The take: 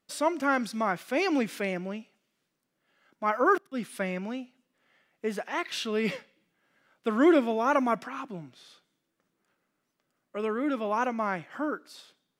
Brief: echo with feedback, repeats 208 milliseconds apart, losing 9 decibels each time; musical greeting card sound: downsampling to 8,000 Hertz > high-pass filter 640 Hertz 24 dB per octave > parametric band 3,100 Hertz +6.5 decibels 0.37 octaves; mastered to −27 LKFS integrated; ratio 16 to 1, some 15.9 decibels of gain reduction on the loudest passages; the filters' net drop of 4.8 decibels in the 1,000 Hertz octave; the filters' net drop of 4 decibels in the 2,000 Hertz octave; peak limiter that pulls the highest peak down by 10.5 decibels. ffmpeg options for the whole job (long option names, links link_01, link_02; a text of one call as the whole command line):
ffmpeg -i in.wav -af "equalizer=frequency=1000:width_type=o:gain=-4.5,equalizer=frequency=2000:width_type=o:gain=-4.5,acompressor=threshold=-33dB:ratio=16,alimiter=level_in=10dB:limit=-24dB:level=0:latency=1,volume=-10dB,aecho=1:1:208|416|624|832:0.355|0.124|0.0435|0.0152,aresample=8000,aresample=44100,highpass=frequency=640:width=0.5412,highpass=frequency=640:width=1.3066,equalizer=frequency=3100:width_type=o:width=0.37:gain=6.5,volume=21.5dB" out.wav